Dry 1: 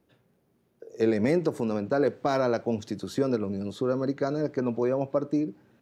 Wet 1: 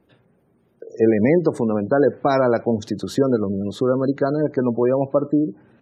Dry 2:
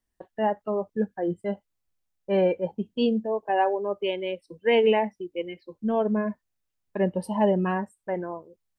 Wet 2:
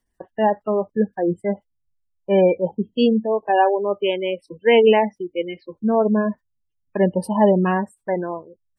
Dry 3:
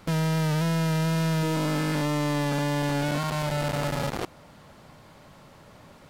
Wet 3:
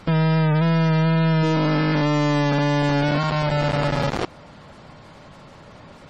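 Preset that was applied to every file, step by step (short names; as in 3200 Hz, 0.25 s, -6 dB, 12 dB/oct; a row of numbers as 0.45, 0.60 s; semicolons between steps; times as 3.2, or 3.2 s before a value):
spectral gate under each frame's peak -30 dB strong; match loudness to -20 LUFS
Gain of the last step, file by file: +8.0, +6.5, +6.5 dB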